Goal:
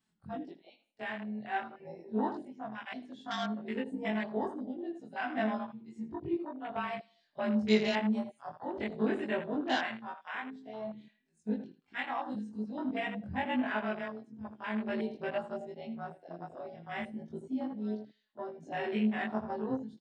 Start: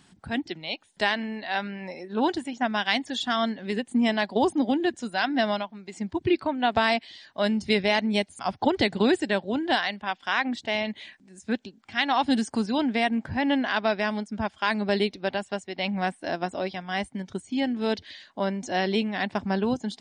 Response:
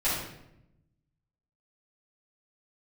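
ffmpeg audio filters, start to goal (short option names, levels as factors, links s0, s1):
-filter_complex "[0:a]afftfilt=real='re':imag='-im':win_size=2048:overlap=0.75,asplit=2[s0][s1];[s1]adelay=80,lowpass=f=4200:p=1,volume=0.355,asplit=2[s2][s3];[s3]adelay=80,lowpass=f=4200:p=1,volume=0.33,asplit=2[s4][s5];[s5]adelay=80,lowpass=f=4200:p=1,volume=0.33,asplit=2[s6][s7];[s7]adelay=80,lowpass=f=4200:p=1,volume=0.33[s8];[s2][s4][s6][s8]amix=inputs=4:normalize=0[s9];[s0][s9]amix=inputs=2:normalize=0,tremolo=f=0.52:d=0.63,flanger=delay=4.5:depth=4.9:regen=47:speed=0.44:shape=sinusoidal,afwtdn=0.00891,volume=1.19"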